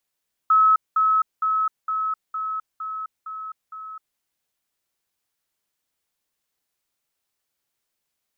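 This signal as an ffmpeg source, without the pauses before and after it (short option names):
-f lavfi -i "aevalsrc='pow(10,(-12.5-3*floor(t/0.46))/20)*sin(2*PI*1290*t)*clip(min(mod(t,0.46),0.26-mod(t,0.46))/0.005,0,1)':d=3.68:s=44100"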